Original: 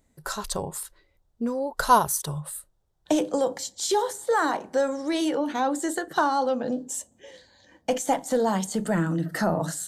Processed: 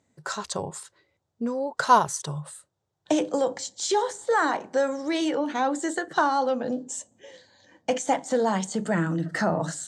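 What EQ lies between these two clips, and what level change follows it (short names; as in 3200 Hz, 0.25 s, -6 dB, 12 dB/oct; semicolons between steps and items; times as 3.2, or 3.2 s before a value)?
Chebyshev band-pass 100–7500 Hz, order 3; dynamic EQ 2100 Hz, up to +4 dB, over -41 dBFS, Q 1.7; 0.0 dB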